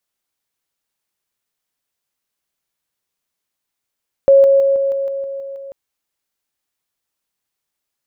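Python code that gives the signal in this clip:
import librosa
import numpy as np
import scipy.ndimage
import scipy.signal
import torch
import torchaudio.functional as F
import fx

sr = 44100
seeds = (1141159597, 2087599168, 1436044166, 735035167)

y = fx.level_ladder(sr, hz=549.0, from_db=-5.0, step_db=-3.0, steps=9, dwell_s=0.16, gap_s=0.0)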